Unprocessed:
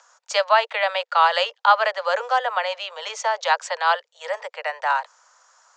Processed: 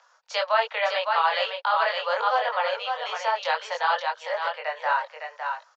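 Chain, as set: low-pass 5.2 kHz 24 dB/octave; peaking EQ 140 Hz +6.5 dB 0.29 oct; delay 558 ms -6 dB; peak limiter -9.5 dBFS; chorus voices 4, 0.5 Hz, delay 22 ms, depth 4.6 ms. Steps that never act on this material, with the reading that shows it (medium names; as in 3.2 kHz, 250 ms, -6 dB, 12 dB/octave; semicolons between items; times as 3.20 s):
peaking EQ 140 Hz: input has nothing below 400 Hz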